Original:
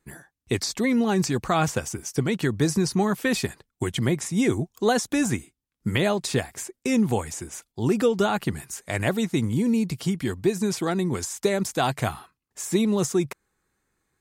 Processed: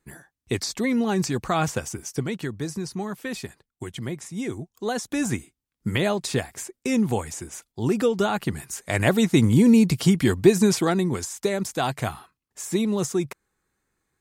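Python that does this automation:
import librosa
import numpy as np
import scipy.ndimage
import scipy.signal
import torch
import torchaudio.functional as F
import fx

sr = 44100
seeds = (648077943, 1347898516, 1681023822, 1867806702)

y = fx.gain(x, sr, db=fx.line((2.05, -1.0), (2.61, -8.0), (4.74, -8.0), (5.33, -0.5), (8.41, -0.5), (9.49, 7.0), (10.6, 7.0), (11.3, -1.5)))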